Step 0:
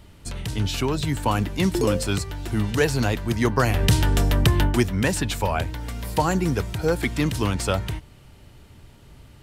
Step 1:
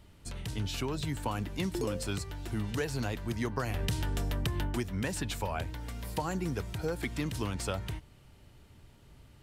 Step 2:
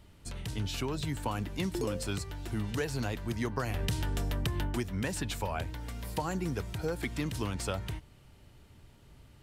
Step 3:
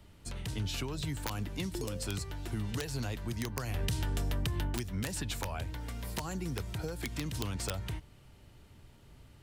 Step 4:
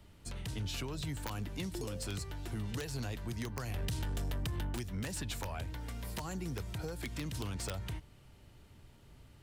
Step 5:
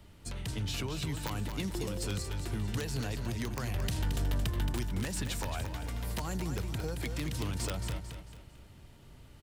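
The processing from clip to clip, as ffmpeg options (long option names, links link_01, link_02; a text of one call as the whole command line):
ffmpeg -i in.wav -af "acompressor=threshold=-20dB:ratio=6,volume=-8.5dB" out.wav
ffmpeg -i in.wav -af anull out.wav
ffmpeg -i in.wav -filter_complex "[0:a]aeval=exprs='(mod(11.9*val(0)+1,2)-1)/11.9':channel_layout=same,acrossover=split=140|3000[link_01][link_02][link_03];[link_02]acompressor=threshold=-37dB:ratio=6[link_04];[link_01][link_04][link_03]amix=inputs=3:normalize=0" out.wav
ffmpeg -i in.wav -af "asoftclip=type=tanh:threshold=-28dB,volume=-1.5dB" out.wav
ffmpeg -i in.wav -af "aecho=1:1:223|446|669|892:0.422|0.164|0.0641|0.025,volume=3dB" out.wav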